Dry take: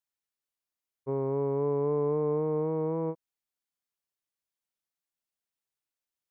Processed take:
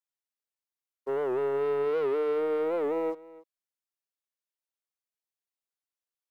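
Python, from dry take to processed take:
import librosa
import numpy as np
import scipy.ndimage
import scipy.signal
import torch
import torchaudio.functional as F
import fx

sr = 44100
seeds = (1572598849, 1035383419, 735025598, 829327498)

y = scipy.signal.sosfilt(scipy.signal.butter(4, 310.0, 'highpass', fs=sr, output='sos'), x)
y = fx.leveller(y, sr, passes=2)
y = y + 10.0 ** (-20.0 / 20.0) * np.pad(y, (int(289 * sr / 1000.0), 0))[:len(y)]
y = fx.record_warp(y, sr, rpm=78.0, depth_cents=160.0)
y = F.gain(torch.from_numpy(y), -1.5).numpy()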